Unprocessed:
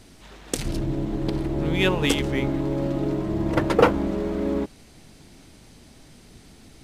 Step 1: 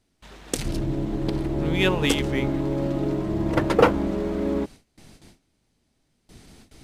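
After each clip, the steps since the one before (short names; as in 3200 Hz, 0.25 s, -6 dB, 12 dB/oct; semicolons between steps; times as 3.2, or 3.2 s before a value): gate with hold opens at -38 dBFS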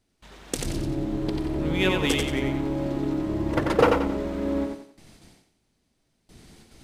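thinning echo 90 ms, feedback 36%, high-pass 160 Hz, level -4 dB; gain -2.5 dB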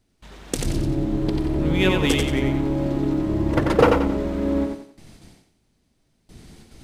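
low shelf 270 Hz +5 dB; gain +2 dB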